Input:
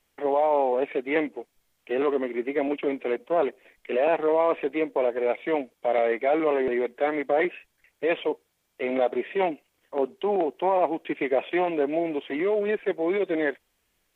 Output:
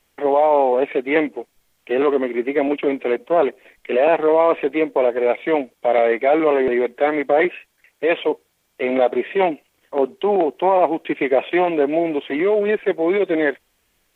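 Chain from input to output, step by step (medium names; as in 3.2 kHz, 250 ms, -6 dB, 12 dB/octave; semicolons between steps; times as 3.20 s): 7.47–8.27 s: bass shelf 130 Hz -8.5 dB; trim +7 dB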